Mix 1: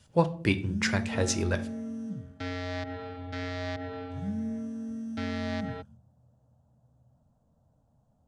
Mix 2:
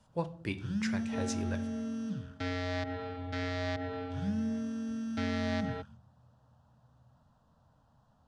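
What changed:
speech -10.5 dB; first sound: add high-order bell 2.2 kHz +13 dB 2.8 oct

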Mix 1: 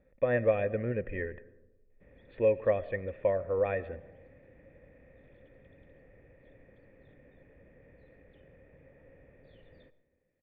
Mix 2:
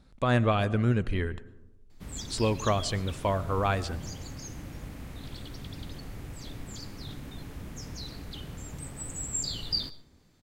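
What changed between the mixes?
speech -9.0 dB; master: remove cascade formant filter e

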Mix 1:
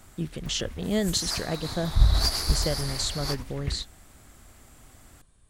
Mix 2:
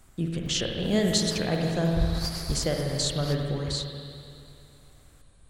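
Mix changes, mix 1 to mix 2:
background -8.0 dB; reverb: on, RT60 2.6 s

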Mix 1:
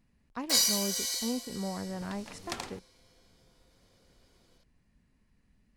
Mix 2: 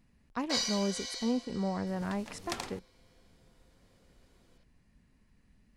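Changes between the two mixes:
speech +3.0 dB; first sound: add distance through air 150 m

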